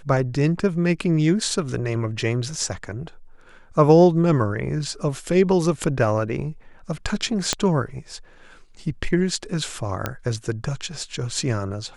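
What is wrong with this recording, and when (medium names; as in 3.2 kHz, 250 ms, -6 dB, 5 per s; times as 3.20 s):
7.53 s: pop -5 dBFS
10.06 s: pop -9 dBFS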